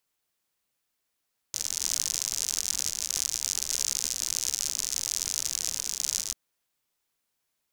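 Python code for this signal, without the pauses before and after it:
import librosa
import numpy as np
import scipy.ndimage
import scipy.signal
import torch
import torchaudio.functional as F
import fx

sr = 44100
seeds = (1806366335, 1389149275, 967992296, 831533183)

y = fx.rain(sr, seeds[0], length_s=4.79, drops_per_s=85.0, hz=6200.0, bed_db=-20.5)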